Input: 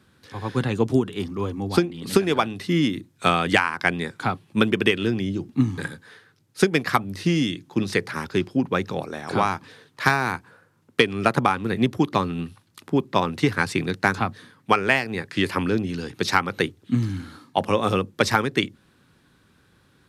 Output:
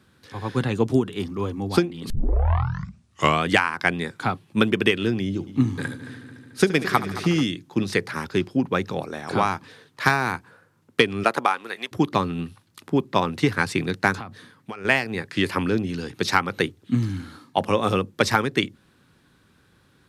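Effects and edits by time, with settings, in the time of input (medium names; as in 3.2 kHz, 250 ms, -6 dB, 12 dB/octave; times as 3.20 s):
2.10 s: tape start 1.36 s
5.25–7.44 s: multi-head delay 73 ms, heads first and third, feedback 71%, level -16 dB
11.23–11.91 s: high-pass 280 Hz -> 1.1 kHz
14.15–14.85 s: compression 12:1, threshold -30 dBFS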